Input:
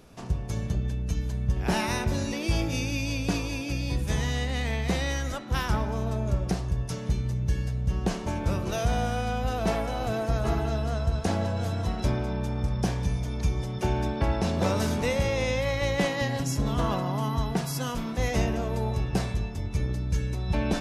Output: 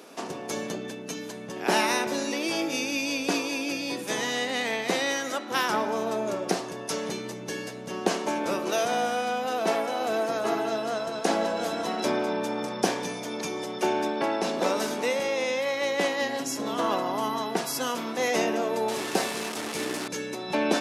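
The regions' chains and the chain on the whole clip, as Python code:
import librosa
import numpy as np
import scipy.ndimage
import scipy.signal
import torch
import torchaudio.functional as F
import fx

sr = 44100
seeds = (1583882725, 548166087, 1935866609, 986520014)

y = fx.chain(x, sr, fx.delta_mod(bps=64000, step_db=-32.0),
    fx.doubler(ms=13.0, db=-12.0), at=(18.88, 20.08))
y = scipy.signal.sosfilt(scipy.signal.butter(4, 270.0, 'highpass', fs=sr, output='sos'), y)
y = fx.rider(y, sr, range_db=4, speed_s=2.0)
y = F.gain(torch.from_numpy(y), 4.5).numpy()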